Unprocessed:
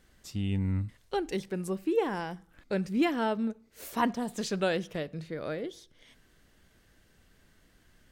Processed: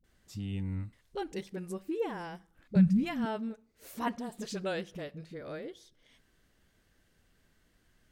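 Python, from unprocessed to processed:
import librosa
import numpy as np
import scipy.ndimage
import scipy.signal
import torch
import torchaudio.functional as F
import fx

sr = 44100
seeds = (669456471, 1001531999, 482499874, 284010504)

y = fx.low_shelf_res(x, sr, hz=240.0, db=13.5, q=3.0, at=(2.75, 3.24))
y = fx.dispersion(y, sr, late='highs', ms=41.0, hz=340.0)
y = y * 10.0 ** (-6.0 / 20.0)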